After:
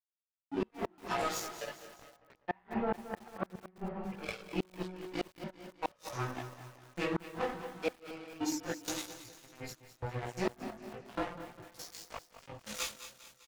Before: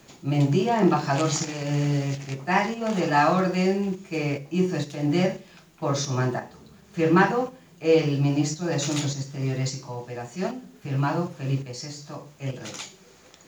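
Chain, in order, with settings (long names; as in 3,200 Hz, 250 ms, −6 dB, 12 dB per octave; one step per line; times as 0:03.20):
phase distortion by the signal itself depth 0.054 ms
rectangular room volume 370 cubic metres, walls furnished, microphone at 4.6 metres
gate pattern "xxxxxxxxx..xxxx" 196 BPM −12 dB
downward compressor 5 to 1, threshold −30 dBFS, peak gain reduction 20.5 dB
noise reduction from a noise print of the clip's start 27 dB
dead-zone distortion −36 dBFS
repeating echo 201 ms, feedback 56%, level −15 dB
multi-voice chorus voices 2, 0.83 Hz, delay 18 ms, depth 1.7 ms
automatic gain control gain up to 12.5 dB
gate with flip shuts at −16 dBFS, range −35 dB
0:02.12–0:04.23: low-pass filter 1,900 Hz 12 dB per octave
feedback echo at a low word length 225 ms, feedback 55%, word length 7 bits, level −12.5 dB
level −4 dB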